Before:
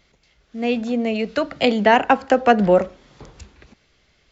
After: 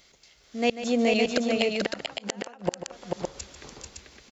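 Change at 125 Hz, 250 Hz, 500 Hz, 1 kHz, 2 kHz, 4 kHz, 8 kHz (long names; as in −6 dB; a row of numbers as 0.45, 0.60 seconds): −10.5 dB, −7.0 dB, −8.5 dB, −16.0 dB, −8.5 dB, −2.0 dB, can't be measured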